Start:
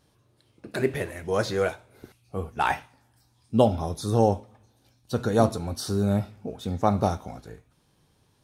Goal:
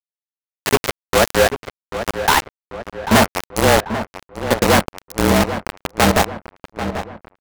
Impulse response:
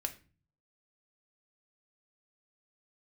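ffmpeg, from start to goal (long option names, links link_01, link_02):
-filter_complex "[0:a]lowpass=11000,acrossover=split=150|1200[link_01][link_02][link_03];[link_01]acompressor=threshold=-40dB:ratio=6[link_04];[link_04][link_02][link_03]amix=inputs=3:normalize=0,afreqshift=-29,acrusher=bits=3:mix=0:aa=0.000001,aeval=exprs='0.447*sin(PI/2*3.16*val(0)/0.447)':channel_layout=same,asetrate=50274,aresample=44100,asplit=2[link_05][link_06];[link_06]adelay=790,lowpass=frequency=2400:poles=1,volume=-10dB,asplit=2[link_07][link_08];[link_08]adelay=790,lowpass=frequency=2400:poles=1,volume=0.53,asplit=2[link_09][link_10];[link_10]adelay=790,lowpass=frequency=2400:poles=1,volume=0.53,asplit=2[link_11][link_12];[link_12]adelay=790,lowpass=frequency=2400:poles=1,volume=0.53,asplit=2[link_13][link_14];[link_14]adelay=790,lowpass=frequency=2400:poles=1,volume=0.53,asplit=2[link_15][link_16];[link_16]adelay=790,lowpass=frequency=2400:poles=1,volume=0.53[link_17];[link_05][link_07][link_09][link_11][link_13][link_15][link_17]amix=inputs=7:normalize=0,adynamicequalizer=threshold=0.0398:dfrequency=2200:dqfactor=0.7:tfrequency=2200:tqfactor=0.7:attack=5:release=100:ratio=0.375:range=2:mode=cutabove:tftype=highshelf"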